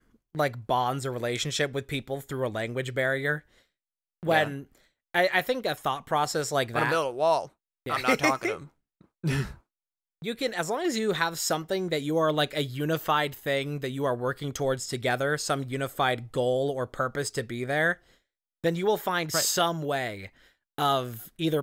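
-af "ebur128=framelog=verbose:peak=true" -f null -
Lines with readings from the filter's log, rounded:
Integrated loudness:
  I:         -27.9 LUFS
  Threshold: -38.3 LUFS
Loudness range:
  LRA:         3.0 LU
  Threshold: -48.4 LUFS
  LRA low:   -30.0 LUFS
  LRA high:  -27.0 LUFS
True peak:
  Peak:       -8.4 dBFS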